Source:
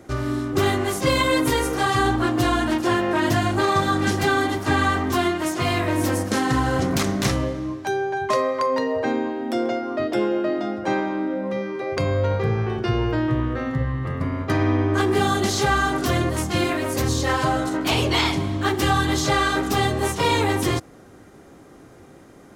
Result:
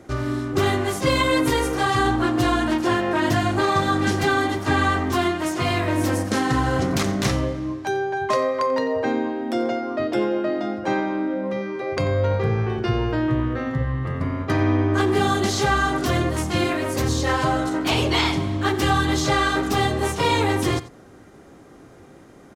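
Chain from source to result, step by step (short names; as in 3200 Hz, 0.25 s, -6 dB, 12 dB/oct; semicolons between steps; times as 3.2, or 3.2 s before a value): high shelf 11000 Hz -6.5 dB; on a send: echo 90 ms -17 dB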